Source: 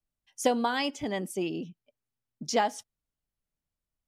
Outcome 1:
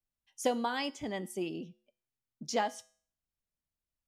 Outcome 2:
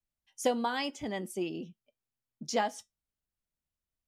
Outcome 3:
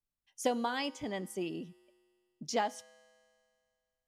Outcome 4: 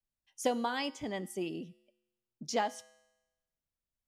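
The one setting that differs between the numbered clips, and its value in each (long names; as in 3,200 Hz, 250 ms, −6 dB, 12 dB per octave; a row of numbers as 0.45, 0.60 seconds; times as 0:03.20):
tuned comb filter, decay: 0.47, 0.16, 2.2, 1 seconds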